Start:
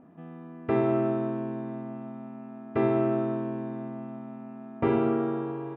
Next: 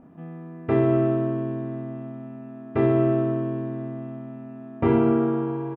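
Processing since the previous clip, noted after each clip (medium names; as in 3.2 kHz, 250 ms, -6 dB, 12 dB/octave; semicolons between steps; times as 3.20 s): bass shelf 98 Hz +10.5 dB; doubling 30 ms -5 dB; trim +1.5 dB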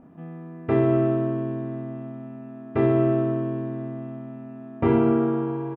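no audible change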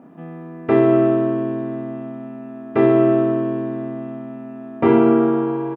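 high-pass 200 Hz 12 dB/octave; trim +7 dB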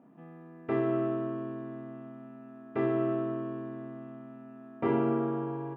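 feedback comb 69 Hz, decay 0.38 s, harmonics all, mix 70%; trim -7 dB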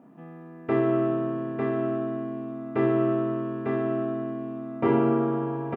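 delay 900 ms -3.5 dB; trim +5.5 dB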